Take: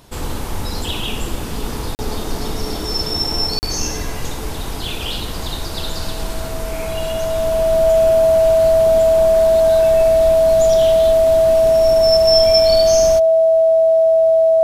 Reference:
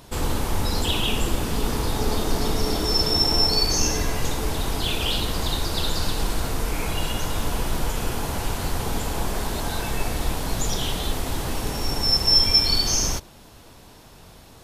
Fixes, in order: band-stop 650 Hz, Q 30; interpolate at 1.95/3.59 s, 39 ms

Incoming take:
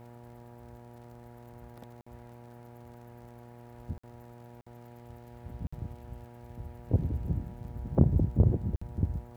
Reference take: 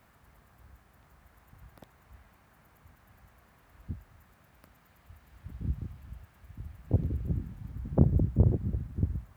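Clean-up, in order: de-click; de-hum 119.5 Hz, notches 8; interpolate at 2.01/3.98/4.61/5.67/8.76 s, 55 ms

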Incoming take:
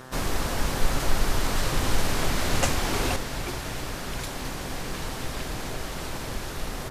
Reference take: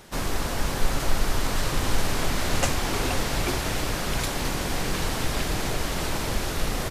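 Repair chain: de-hum 129 Hz, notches 14; trim 0 dB, from 3.16 s +6 dB

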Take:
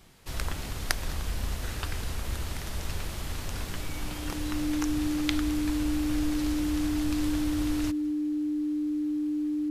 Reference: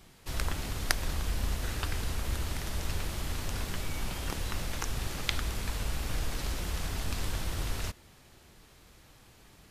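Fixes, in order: band-stop 300 Hz, Q 30; inverse comb 208 ms -22.5 dB

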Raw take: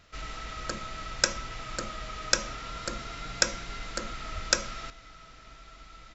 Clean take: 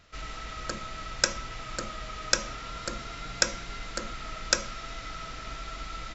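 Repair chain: 4.34–4.46 s: high-pass 140 Hz 24 dB/octave; trim 0 dB, from 4.90 s +11.5 dB

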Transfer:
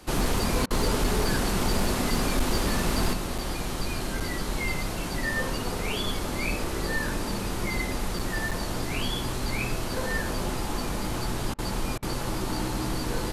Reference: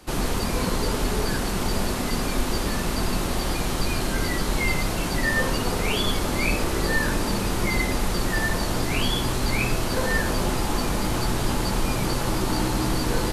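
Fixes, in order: clip repair -17.5 dBFS; interpolate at 3.38/4.20/8.19/8.51 s, 5.6 ms; interpolate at 0.66/11.54/11.98 s, 44 ms; gain correction +5.5 dB, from 3.13 s

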